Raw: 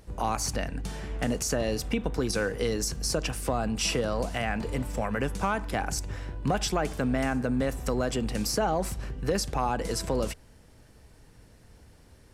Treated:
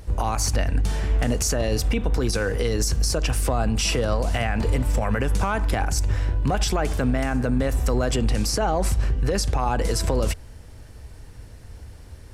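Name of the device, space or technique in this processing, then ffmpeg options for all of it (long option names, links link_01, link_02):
car stereo with a boomy subwoofer: -filter_complex "[0:a]asettb=1/sr,asplit=3[link_01][link_02][link_03];[link_01]atrim=end=8.194[link_04];[link_02]atrim=start=8.19:end=9.71,asetpts=PTS-STARTPTS,afade=type=in:duration=0.004:curve=qsin,afade=type=out:start_time=1.516:duration=0.004:curve=qsin,lowpass=12000[link_05];[link_03]atrim=start=9.706[link_06];[link_04][link_05]acrossfade=duration=0.004:curve1=hsin:curve2=qsin[link_07];[link_07][link_06]acrossfade=duration=0.004:curve1=qsin:curve2=hsin,lowshelf=frequency=120:width_type=q:width=1.5:gain=6,alimiter=limit=-20.5dB:level=0:latency=1:release=65,volume=7.5dB"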